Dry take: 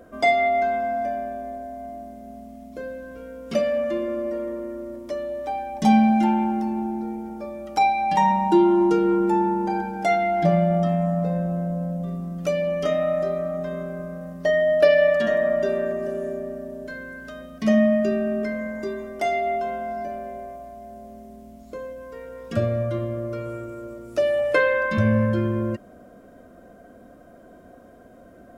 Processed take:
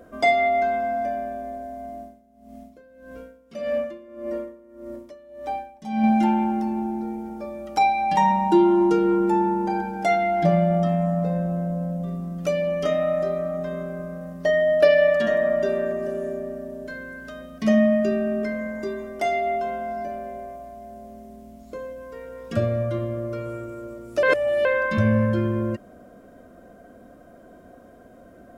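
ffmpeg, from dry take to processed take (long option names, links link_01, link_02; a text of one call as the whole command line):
ffmpeg -i in.wav -filter_complex "[0:a]asettb=1/sr,asplit=3[link_01][link_02][link_03];[link_01]atrim=end=1.994[link_04];[link_02]atrim=start=1.99:end=6.04,asetpts=PTS-STARTPTS,afade=type=in:duration=0.004:curve=qsin,afade=type=out:start_time=4.046:duration=0.004:curve=qsin,aeval=exprs='val(0)*pow(10,-19*(0.5-0.5*cos(2*PI*1.7*n/s))/20)':channel_layout=same[link_05];[link_03]atrim=start=6.036[link_06];[link_04][link_05]acrossfade=duration=0.004:curve1=hsin:curve2=qsin[link_07];[link_07][link_06]acrossfade=duration=0.004:curve1=qsin:curve2=hsin,asplit=3[link_08][link_09][link_10];[link_08]atrim=end=24.232[link_11];[link_09]atrim=start=24.228:end=24.652,asetpts=PTS-STARTPTS,areverse[link_12];[link_10]atrim=start=24.648[link_13];[link_11][link_12]acrossfade=duration=0.004:curve1=hsin:curve2=hsin[link_14];[link_14][link_13]acrossfade=duration=0.004:curve1=hsin:curve2=hsin" out.wav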